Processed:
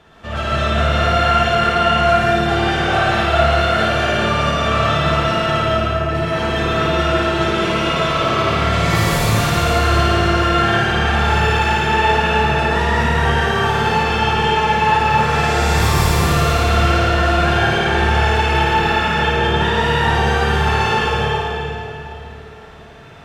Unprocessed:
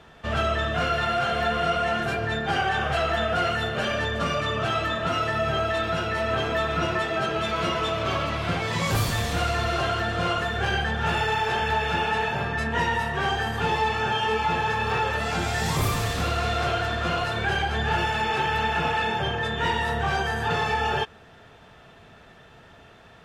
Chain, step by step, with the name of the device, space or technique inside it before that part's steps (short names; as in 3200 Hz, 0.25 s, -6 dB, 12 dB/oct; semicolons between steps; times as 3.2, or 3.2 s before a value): 5.6–6.09 Bessel low-pass 510 Hz; tunnel (flutter echo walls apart 9.5 m, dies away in 0.86 s; reverb RT60 3.2 s, pre-delay 0.101 s, DRR -6.5 dB)